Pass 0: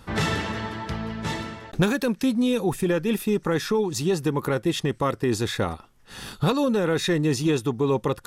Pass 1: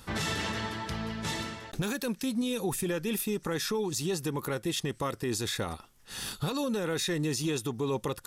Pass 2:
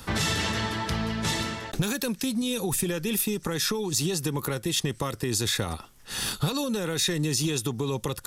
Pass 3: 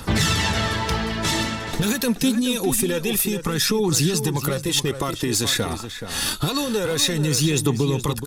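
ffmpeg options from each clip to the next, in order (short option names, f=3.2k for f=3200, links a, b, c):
-af "highshelf=f=3.4k:g=11,alimiter=limit=-18dB:level=0:latency=1:release=91,volume=-4.5dB"
-filter_complex "[0:a]acrossover=split=150|3000[a][b][c];[b]acompressor=threshold=-35dB:ratio=6[d];[a][d][c]amix=inputs=3:normalize=0,volume=7.5dB"
-filter_complex "[0:a]aeval=exprs='clip(val(0),-1,0.0944)':c=same,aphaser=in_gain=1:out_gain=1:delay=4.6:decay=0.41:speed=0.26:type=triangular,asplit=2[a][b];[b]adelay=425.7,volume=-9dB,highshelf=f=4k:g=-9.58[c];[a][c]amix=inputs=2:normalize=0,volume=5dB"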